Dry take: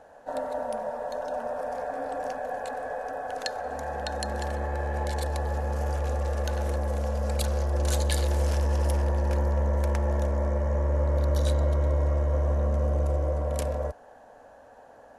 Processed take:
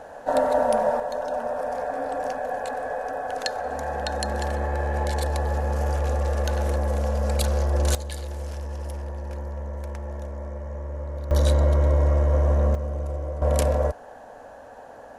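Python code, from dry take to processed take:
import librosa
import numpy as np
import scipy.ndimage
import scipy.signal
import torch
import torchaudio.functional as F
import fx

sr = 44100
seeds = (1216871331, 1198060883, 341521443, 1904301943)

y = fx.gain(x, sr, db=fx.steps((0.0, 10.5), (1.0, 4.0), (7.95, -7.5), (11.31, 5.0), (12.75, -3.5), (13.42, 7.5)))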